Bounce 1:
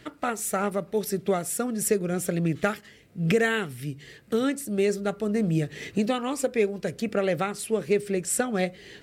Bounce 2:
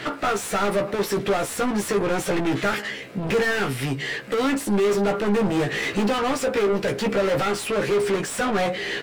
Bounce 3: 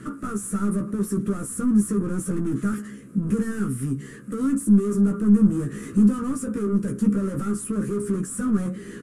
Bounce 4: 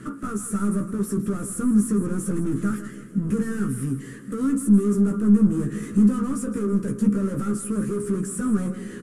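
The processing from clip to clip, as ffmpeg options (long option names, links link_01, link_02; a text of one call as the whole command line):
ffmpeg -i in.wav -filter_complex "[0:a]asplit=2[link_01][link_02];[link_02]highpass=frequency=720:poles=1,volume=37dB,asoftclip=type=tanh:threshold=-9.5dB[link_03];[link_01][link_03]amix=inputs=2:normalize=0,lowpass=frequency=2100:poles=1,volume=-6dB,asplit=2[link_04][link_05];[link_05]adelay=15,volume=-4.5dB[link_06];[link_04][link_06]amix=inputs=2:normalize=0,volume=-6.5dB" out.wav
ffmpeg -i in.wav -af "firequalizer=gain_entry='entry(150,0);entry(210,9);entry(300,-2);entry(750,-28);entry(1200,-7);entry(2100,-23);entry(4100,-25);entry(6800,-7);entry(10000,4);entry(16000,-24)':delay=0.05:min_phase=1" out.wav
ffmpeg -i in.wav -af "aecho=1:1:161|322|483|644|805:0.224|0.107|0.0516|0.0248|0.0119" out.wav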